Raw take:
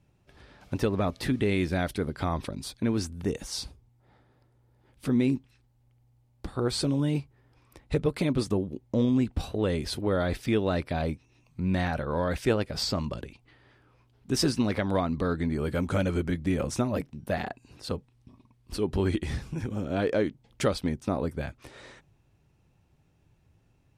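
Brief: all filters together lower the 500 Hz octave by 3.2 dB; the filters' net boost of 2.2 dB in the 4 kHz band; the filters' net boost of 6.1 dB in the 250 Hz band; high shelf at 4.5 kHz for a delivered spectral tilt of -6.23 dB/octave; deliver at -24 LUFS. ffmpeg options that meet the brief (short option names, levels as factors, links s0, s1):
-af "equalizer=f=250:t=o:g=9,equalizer=f=500:t=o:g=-7.5,equalizer=f=4000:t=o:g=4.5,highshelf=f=4500:g=-3,volume=1.26"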